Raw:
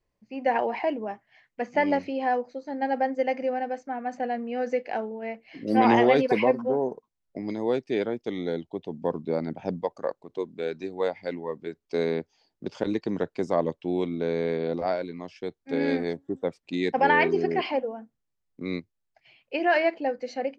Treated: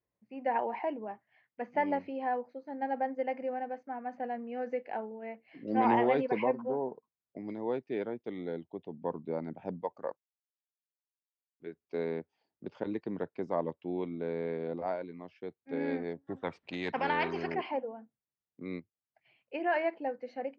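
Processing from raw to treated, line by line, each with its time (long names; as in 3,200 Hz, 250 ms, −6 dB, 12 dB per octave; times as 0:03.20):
0:10.17–0:11.60: silence
0:16.27–0:17.55: every bin compressed towards the loudest bin 2 to 1
whole clip: low-pass filter 2,500 Hz 12 dB per octave; dynamic equaliser 920 Hz, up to +6 dB, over −44 dBFS, Q 5.4; high-pass filter 81 Hz; level −8 dB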